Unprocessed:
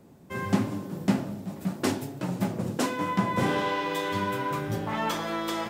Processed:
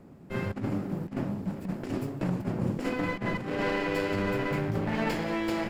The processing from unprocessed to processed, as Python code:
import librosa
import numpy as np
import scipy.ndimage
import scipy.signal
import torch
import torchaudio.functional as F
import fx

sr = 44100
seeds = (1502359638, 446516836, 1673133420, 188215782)

y = fx.lower_of_two(x, sr, delay_ms=0.4)
y = fx.high_shelf(y, sr, hz=3200.0, db=-12.0)
y = fx.over_compress(y, sr, threshold_db=-30.0, ratio=-0.5)
y = y * librosa.db_to_amplitude(1.5)